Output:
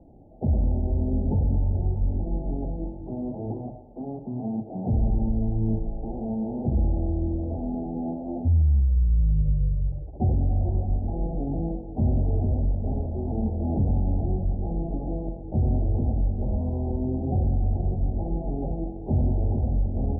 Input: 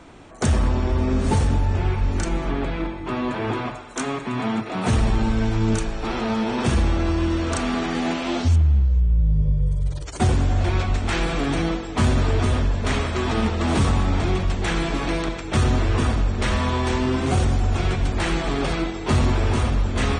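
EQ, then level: rippled Chebyshev low-pass 830 Hz, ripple 3 dB; low shelf 150 Hz +7.5 dB; -6.5 dB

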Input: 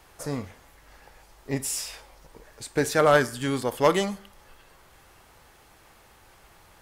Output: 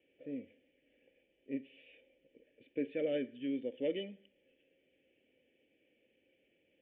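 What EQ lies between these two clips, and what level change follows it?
vocal tract filter i; vowel filter e; +13.0 dB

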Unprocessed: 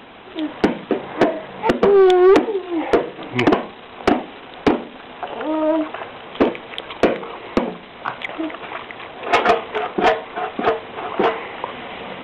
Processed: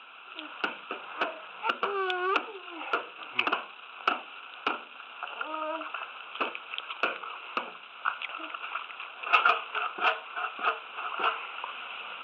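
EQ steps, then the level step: double band-pass 1900 Hz, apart 0.94 oct; +2.0 dB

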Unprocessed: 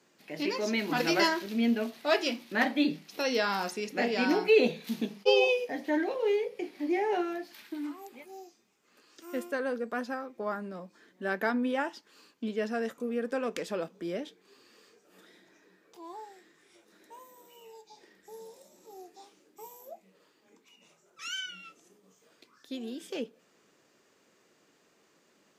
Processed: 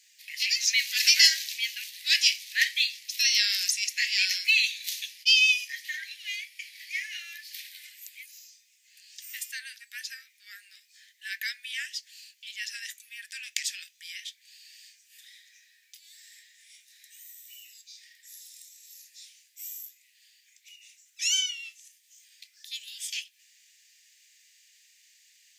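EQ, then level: steep high-pass 1800 Hz 72 dB/oct; high shelf 2500 Hz +11 dB; dynamic EQ 6500 Hz, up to +6 dB, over -47 dBFS, Q 1.3; +3.0 dB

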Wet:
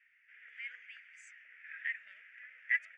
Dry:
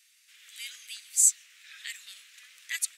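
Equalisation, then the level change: ladder low-pass 2200 Hz, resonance 50%; low shelf 480 Hz +8.5 dB; fixed phaser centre 1100 Hz, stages 6; +8.0 dB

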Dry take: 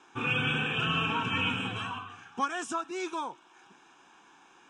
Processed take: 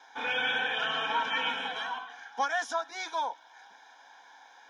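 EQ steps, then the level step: HPF 340 Hz 24 dB/oct; fixed phaser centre 1800 Hz, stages 8; +7.0 dB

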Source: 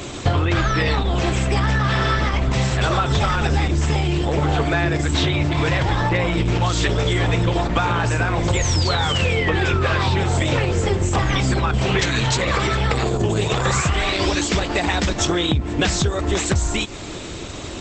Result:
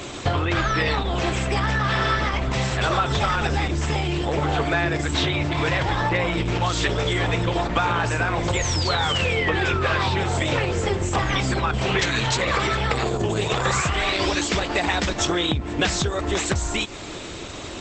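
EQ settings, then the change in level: low shelf 340 Hz -6 dB; high shelf 5600 Hz -4.5 dB; 0.0 dB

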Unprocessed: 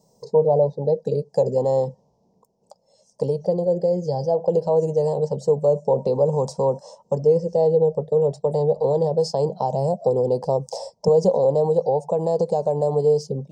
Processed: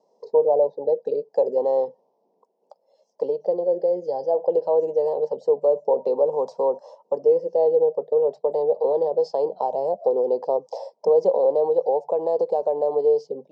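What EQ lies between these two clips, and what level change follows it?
HPF 310 Hz 24 dB/oct; air absorption 160 m; high shelf 5600 Hz -11.5 dB; 0.0 dB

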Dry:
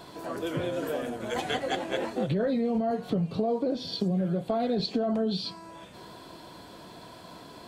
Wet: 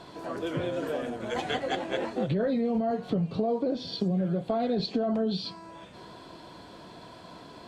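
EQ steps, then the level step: air absorption 50 m; 0.0 dB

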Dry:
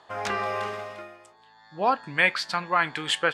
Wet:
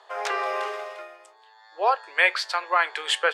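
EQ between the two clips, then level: steep high-pass 380 Hz 72 dB/oct; +1.5 dB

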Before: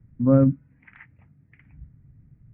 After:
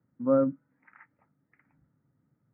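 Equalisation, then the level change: speaker cabinet 270–2000 Hz, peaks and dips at 290 Hz +3 dB, 550 Hz +6 dB, 890 Hz +6 dB, 1300 Hz +9 dB; -7.5 dB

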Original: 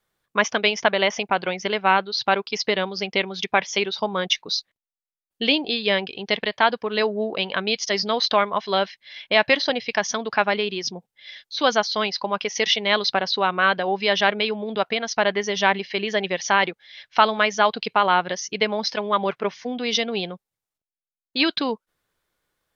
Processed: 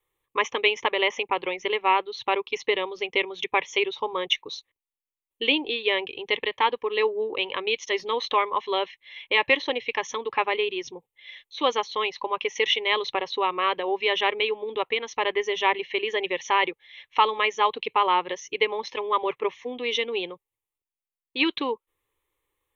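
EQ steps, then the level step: fixed phaser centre 1000 Hz, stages 8; 0.0 dB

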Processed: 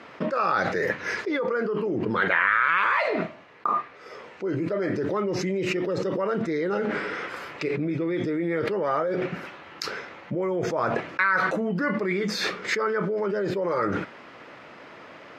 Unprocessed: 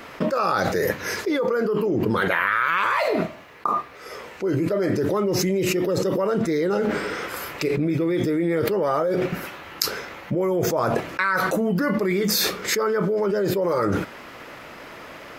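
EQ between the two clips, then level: high shelf 4100 Hz -5 dB; dynamic EQ 1900 Hz, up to +7 dB, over -36 dBFS, Q 1; BPF 110–5800 Hz; -4.5 dB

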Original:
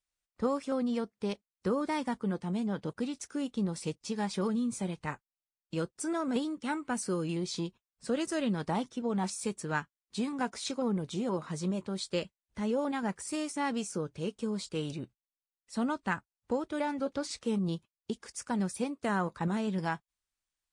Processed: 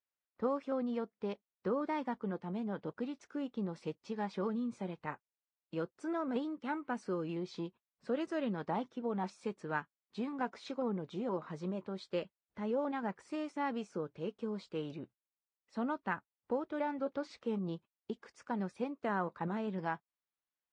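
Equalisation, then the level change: HPF 400 Hz 6 dB/oct; tape spacing loss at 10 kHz 33 dB; +1.0 dB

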